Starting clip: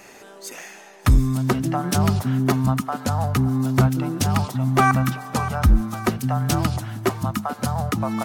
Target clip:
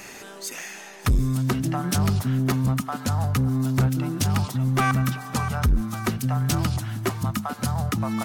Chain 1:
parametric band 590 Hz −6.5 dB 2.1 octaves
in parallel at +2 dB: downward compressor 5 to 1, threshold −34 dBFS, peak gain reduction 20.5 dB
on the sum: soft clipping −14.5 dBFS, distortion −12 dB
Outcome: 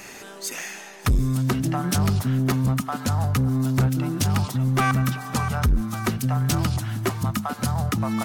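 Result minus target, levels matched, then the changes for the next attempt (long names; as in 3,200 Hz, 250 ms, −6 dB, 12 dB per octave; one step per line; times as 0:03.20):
downward compressor: peak gain reduction −7 dB
change: downward compressor 5 to 1, threshold −43 dBFS, peak gain reduction 27.5 dB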